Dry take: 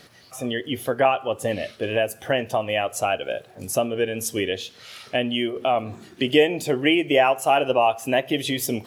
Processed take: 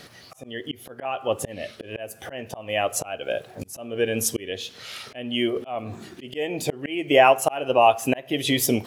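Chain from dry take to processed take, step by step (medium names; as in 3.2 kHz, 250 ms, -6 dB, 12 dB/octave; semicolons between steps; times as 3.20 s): slow attack 408 ms; trim +4 dB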